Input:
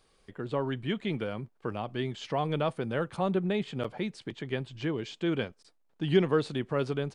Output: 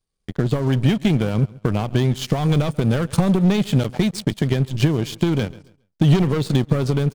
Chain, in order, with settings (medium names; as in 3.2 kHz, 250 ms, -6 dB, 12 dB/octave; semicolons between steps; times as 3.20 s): 2.36–4.36 s: treble shelf 3 kHz +5.5 dB; waveshaping leveller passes 3; feedback delay 137 ms, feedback 35%, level -19.5 dB; compression, threshold -24 dBFS, peak gain reduction 9.5 dB; tone controls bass +13 dB, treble +9 dB; power-law waveshaper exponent 1.4; trim +4.5 dB